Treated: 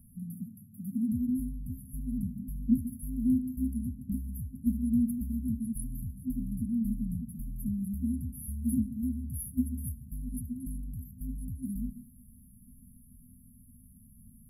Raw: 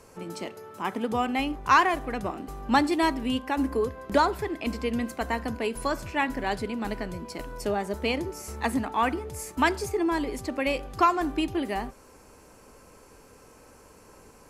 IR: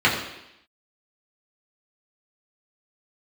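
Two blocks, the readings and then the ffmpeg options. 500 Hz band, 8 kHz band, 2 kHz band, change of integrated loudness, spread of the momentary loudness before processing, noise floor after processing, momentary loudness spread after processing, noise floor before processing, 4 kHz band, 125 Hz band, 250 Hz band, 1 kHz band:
below −40 dB, −5.0 dB, below −40 dB, −6.0 dB, 12 LU, −56 dBFS, 12 LU, −53 dBFS, below −40 dB, +3.5 dB, −1.0 dB, below −40 dB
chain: -filter_complex "[0:a]asplit=2[link_01][link_02];[1:a]atrim=start_sample=2205,asetrate=57330,aresample=44100,adelay=125[link_03];[link_02][link_03]afir=irnorm=-1:irlink=0,volume=-29.5dB[link_04];[link_01][link_04]amix=inputs=2:normalize=0,afftfilt=real='re*(1-between(b*sr/4096,260,10000))':imag='im*(1-between(b*sr/4096,260,10000))':win_size=4096:overlap=0.75,volume=3dB"

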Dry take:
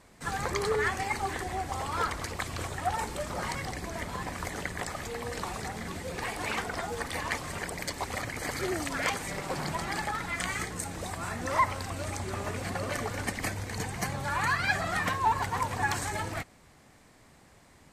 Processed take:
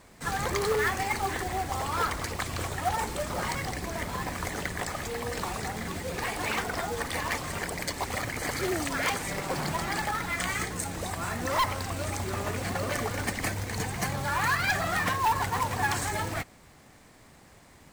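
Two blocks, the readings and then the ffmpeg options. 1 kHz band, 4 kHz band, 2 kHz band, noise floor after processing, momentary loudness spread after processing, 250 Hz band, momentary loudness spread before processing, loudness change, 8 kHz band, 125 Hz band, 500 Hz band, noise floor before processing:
+1.5 dB, +3.0 dB, +2.0 dB, −55 dBFS, 7 LU, +2.5 dB, 8 LU, +2.0 dB, +3.0 dB, +2.5 dB, +2.5 dB, −58 dBFS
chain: -af "aeval=exprs='0.224*sin(PI/2*2.24*val(0)/0.224)':channel_layout=same,acrusher=bits=3:mode=log:mix=0:aa=0.000001,volume=-8dB"

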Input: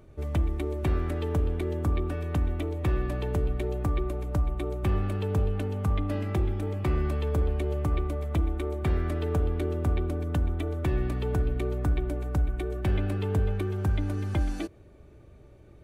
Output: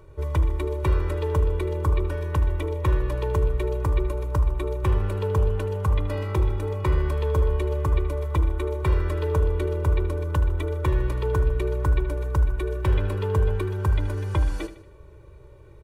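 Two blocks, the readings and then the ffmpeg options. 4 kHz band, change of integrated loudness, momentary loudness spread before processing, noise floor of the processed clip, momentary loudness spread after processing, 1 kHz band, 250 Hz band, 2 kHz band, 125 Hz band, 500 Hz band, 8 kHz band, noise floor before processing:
+3.0 dB, +4.0 dB, 2 LU, −47 dBFS, 2 LU, +5.5 dB, −1.5 dB, +4.0 dB, +4.0 dB, +5.0 dB, can't be measured, −52 dBFS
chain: -filter_complex "[0:a]equalizer=frequency=1100:width_type=o:width=0.24:gain=13.5,aecho=1:1:2.1:1,asplit=2[link_01][link_02];[link_02]aecho=0:1:77|154|231|308:0.224|0.0985|0.0433|0.0191[link_03];[link_01][link_03]amix=inputs=2:normalize=0"

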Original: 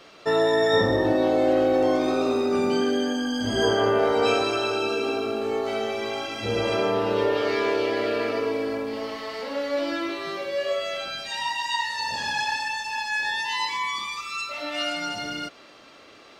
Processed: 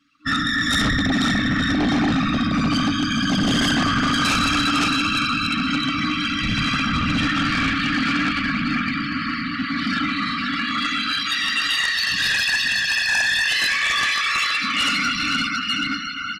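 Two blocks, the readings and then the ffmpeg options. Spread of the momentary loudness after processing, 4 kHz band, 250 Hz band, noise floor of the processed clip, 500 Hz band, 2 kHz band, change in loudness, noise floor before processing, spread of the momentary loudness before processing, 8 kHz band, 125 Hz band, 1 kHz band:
5 LU, +9.5 dB, +6.5 dB, −27 dBFS, −15.5 dB, +9.5 dB, +5.0 dB, −49 dBFS, 9 LU, +9.5 dB, +10.5 dB, +3.0 dB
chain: -af "aecho=1:1:510|892.5|1179|1395|1556:0.631|0.398|0.251|0.158|0.1,afftdn=noise_reduction=26:noise_floor=-38,afftfilt=real='hypot(re,im)*cos(2*PI*random(0))':imag='hypot(re,im)*sin(2*PI*random(1))':win_size=512:overlap=0.75,afftfilt=real='re*(1-between(b*sr/4096,310,1100))':imag='im*(1-between(b*sr/4096,310,1100))':win_size=4096:overlap=0.75,aeval=exprs='0.133*sin(PI/2*3.16*val(0)/0.133)':channel_layout=same,volume=2dB"

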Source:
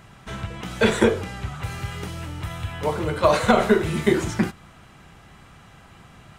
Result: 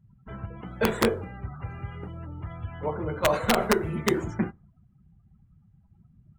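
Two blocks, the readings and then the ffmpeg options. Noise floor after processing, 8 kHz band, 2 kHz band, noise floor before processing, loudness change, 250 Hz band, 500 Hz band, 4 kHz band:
−62 dBFS, −3.0 dB, −5.5 dB, −49 dBFS, −5.5 dB, −6.0 dB, −6.0 dB, −4.0 dB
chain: -af "equalizer=frequency=4600:width_type=o:width=2.3:gain=-7.5,aeval=exprs='(mod(2.24*val(0)+1,2)-1)/2.24':channel_layout=same,afftdn=noise_reduction=31:noise_floor=-39,volume=-5dB"

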